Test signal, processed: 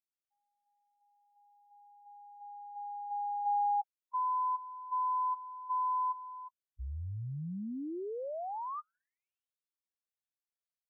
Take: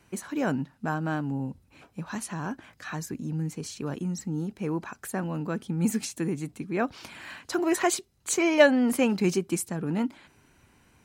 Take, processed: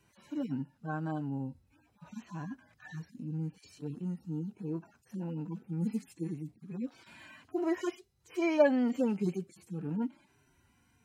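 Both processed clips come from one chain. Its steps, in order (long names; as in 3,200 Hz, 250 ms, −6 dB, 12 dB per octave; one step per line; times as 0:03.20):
harmonic-percussive split with one part muted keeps harmonic
level −5.5 dB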